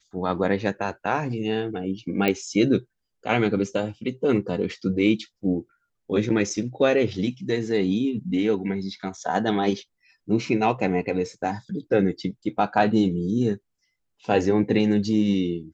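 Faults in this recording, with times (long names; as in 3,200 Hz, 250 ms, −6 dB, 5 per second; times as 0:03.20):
0:02.28: click −10 dBFS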